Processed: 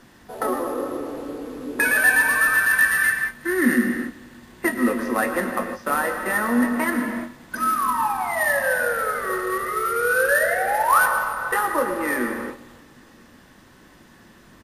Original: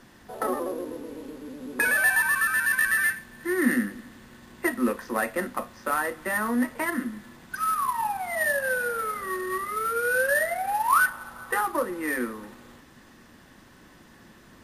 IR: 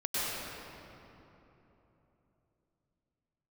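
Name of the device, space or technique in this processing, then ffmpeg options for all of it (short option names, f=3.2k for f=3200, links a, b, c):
keyed gated reverb: -filter_complex "[0:a]asplit=3[a][b][c];[1:a]atrim=start_sample=2205[d];[b][d]afir=irnorm=-1:irlink=0[e];[c]apad=whole_len=645327[f];[e][f]sidechaingate=range=-17dB:threshold=-43dB:ratio=16:detection=peak,volume=-11dB[g];[a][g]amix=inputs=2:normalize=0,asplit=2[h][i];[i]adelay=21,volume=-11.5dB[j];[h][j]amix=inputs=2:normalize=0,volume=1.5dB"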